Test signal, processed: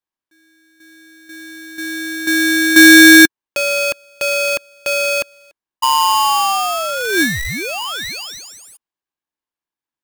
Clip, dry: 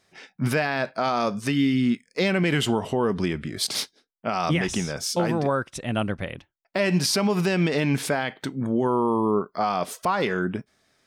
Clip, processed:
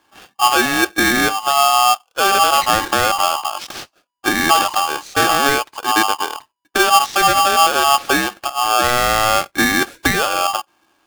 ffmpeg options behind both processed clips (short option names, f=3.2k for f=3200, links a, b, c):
-filter_complex "[0:a]bass=f=250:g=10,treble=f=4k:g=-9,acrossover=split=5100[a][b];[b]acompressor=threshold=-48dB:ratio=4:attack=1:release=60[c];[a][c]amix=inputs=2:normalize=0,equalizer=f=660:w=3.8:g=11,aeval=exprs='val(0)*sgn(sin(2*PI*980*n/s))':c=same,volume=2.5dB"